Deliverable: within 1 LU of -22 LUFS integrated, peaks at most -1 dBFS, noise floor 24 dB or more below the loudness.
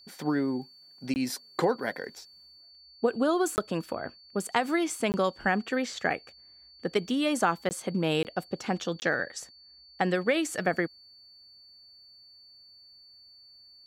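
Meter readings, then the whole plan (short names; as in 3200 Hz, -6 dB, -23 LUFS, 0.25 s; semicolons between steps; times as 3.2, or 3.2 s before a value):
dropouts 6; longest dropout 19 ms; steady tone 4500 Hz; tone level -52 dBFS; loudness -29.5 LUFS; peak -10.0 dBFS; loudness target -22.0 LUFS
-> interpolate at 1.14/3.56/5.12/7.69/8.23/9, 19 ms; notch 4500 Hz, Q 30; gain +7.5 dB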